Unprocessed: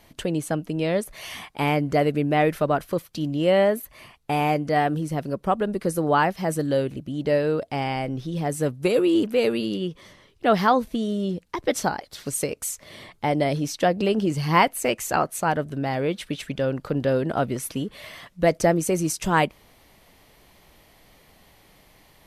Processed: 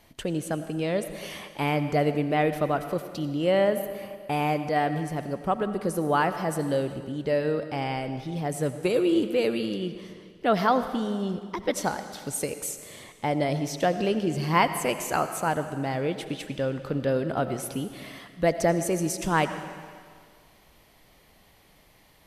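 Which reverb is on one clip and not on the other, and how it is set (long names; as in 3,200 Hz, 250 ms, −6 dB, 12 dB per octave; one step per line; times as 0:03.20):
comb and all-pass reverb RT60 1.9 s, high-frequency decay 0.95×, pre-delay 45 ms, DRR 10 dB
level −3.5 dB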